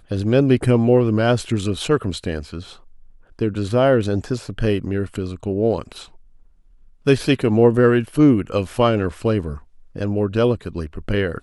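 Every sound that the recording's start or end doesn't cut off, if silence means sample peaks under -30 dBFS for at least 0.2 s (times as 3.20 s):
3.39–6.03 s
7.06–9.58 s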